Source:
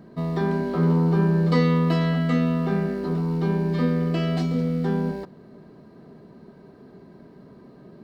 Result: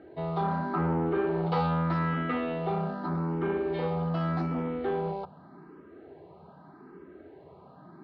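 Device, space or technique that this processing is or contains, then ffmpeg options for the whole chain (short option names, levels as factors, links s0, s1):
barber-pole phaser into a guitar amplifier: -filter_complex "[0:a]asplit=2[s0][s1];[s1]afreqshift=0.83[s2];[s0][s2]amix=inputs=2:normalize=1,asoftclip=type=tanh:threshold=0.0708,highpass=78,equalizer=f=85:t=q:w=4:g=7,equalizer=f=120:t=q:w=4:g=-8,equalizer=f=220:t=q:w=4:g=-9,equalizer=f=330:t=q:w=4:g=5,equalizer=f=820:t=q:w=4:g=9,equalizer=f=1300:t=q:w=4:g=8,lowpass=f=3700:w=0.5412,lowpass=f=3700:w=1.3066"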